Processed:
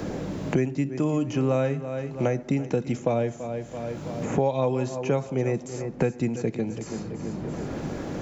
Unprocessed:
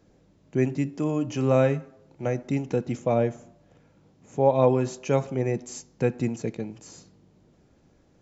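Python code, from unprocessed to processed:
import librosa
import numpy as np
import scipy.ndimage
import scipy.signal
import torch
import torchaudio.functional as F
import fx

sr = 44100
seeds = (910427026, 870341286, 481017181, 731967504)

p1 = x + fx.echo_feedback(x, sr, ms=333, feedback_pct=26, wet_db=-16.0, dry=0)
y = fx.band_squash(p1, sr, depth_pct=100)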